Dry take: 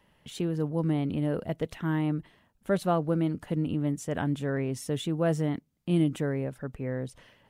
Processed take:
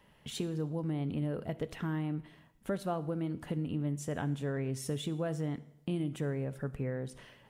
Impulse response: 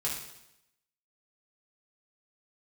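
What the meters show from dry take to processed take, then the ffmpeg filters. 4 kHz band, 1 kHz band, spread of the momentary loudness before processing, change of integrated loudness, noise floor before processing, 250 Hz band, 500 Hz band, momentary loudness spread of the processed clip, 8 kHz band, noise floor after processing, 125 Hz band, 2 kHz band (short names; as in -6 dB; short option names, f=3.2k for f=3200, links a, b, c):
-3.5 dB, -7.5 dB, 9 LU, -6.5 dB, -67 dBFS, -7.0 dB, -7.0 dB, 5 LU, -2.5 dB, -63 dBFS, -5.0 dB, -6.5 dB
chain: -filter_complex "[0:a]acompressor=threshold=-35dB:ratio=3,asplit=2[a][b];[1:a]atrim=start_sample=2205[c];[b][c]afir=irnorm=-1:irlink=0,volume=-15dB[d];[a][d]amix=inputs=2:normalize=0"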